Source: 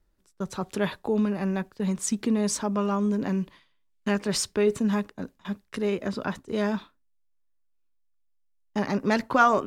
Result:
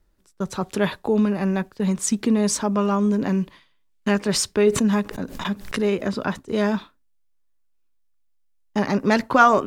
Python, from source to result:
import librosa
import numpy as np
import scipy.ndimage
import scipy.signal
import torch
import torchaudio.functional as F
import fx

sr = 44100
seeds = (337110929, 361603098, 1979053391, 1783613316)

y = fx.pre_swell(x, sr, db_per_s=83.0, at=(4.66, 6.06))
y = y * 10.0 ** (5.0 / 20.0)